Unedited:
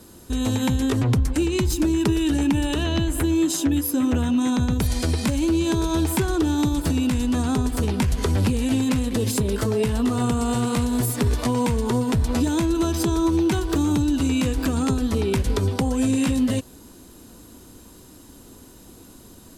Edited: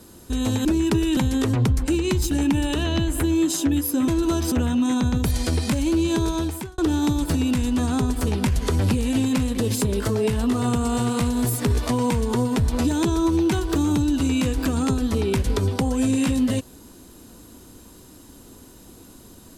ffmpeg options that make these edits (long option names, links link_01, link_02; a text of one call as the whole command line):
ffmpeg -i in.wav -filter_complex "[0:a]asplit=8[link_01][link_02][link_03][link_04][link_05][link_06][link_07][link_08];[link_01]atrim=end=0.652[link_09];[link_02]atrim=start=1.788:end=2.312[link_10];[link_03]atrim=start=0.648:end=1.792[link_11];[link_04]atrim=start=2.308:end=4.082[link_12];[link_05]atrim=start=12.598:end=13.042[link_13];[link_06]atrim=start=4.078:end=6.34,asetpts=PTS-STARTPTS,afade=type=out:start_time=1.742:duration=0.52[link_14];[link_07]atrim=start=6.34:end=12.602,asetpts=PTS-STARTPTS,afade=type=in:duration=0.004:curve=hsin[link_15];[link_08]atrim=start=13.038[link_16];[link_09][link_10]acrossfade=duration=0.004:curve1=hsin:curve2=hsin[link_17];[link_17][link_11]acrossfade=duration=0.004:curve1=hsin:curve2=hsin[link_18];[link_18][link_12]acrossfade=duration=0.004:curve1=hsin:curve2=hsin[link_19];[link_19][link_13]acrossfade=duration=0.004:curve1=hsin:curve2=hsin[link_20];[link_14][link_15]concat=n=2:v=0:a=1[link_21];[link_20][link_21]acrossfade=duration=0.004:curve1=hsin:curve2=hsin[link_22];[link_22][link_16]acrossfade=duration=0.004:curve1=hsin:curve2=hsin" out.wav